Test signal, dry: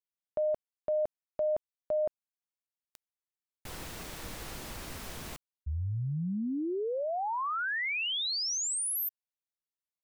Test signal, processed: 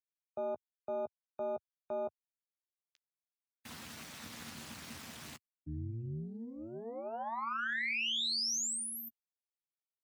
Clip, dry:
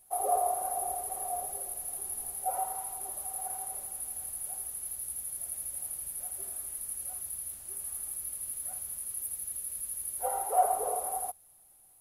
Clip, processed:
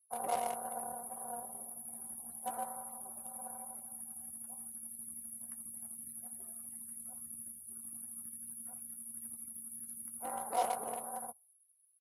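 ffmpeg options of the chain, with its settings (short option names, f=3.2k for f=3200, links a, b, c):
-filter_complex "[0:a]asplit=2[a][b];[b]acrusher=bits=5:dc=4:mix=0:aa=0.000001,volume=-8.5dB[c];[a][c]amix=inputs=2:normalize=0,acrossover=split=8500[d][e];[e]acompressor=threshold=-46dB:ratio=4:attack=1:release=60[f];[d][f]amix=inputs=2:normalize=0,equalizer=f=280:t=o:w=2.7:g=-12.5,tremolo=f=230:d=0.75,afftdn=nr=30:nf=-58,highpass=f=98:w=0.5412,highpass=f=98:w=1.3066,bass=f=250:g=3,treble=f=4k:g=0,asplit=2[g][h];[h]adelay=13,volume=-12dB[i];[g][i]amix=inputs=2:normalize=0"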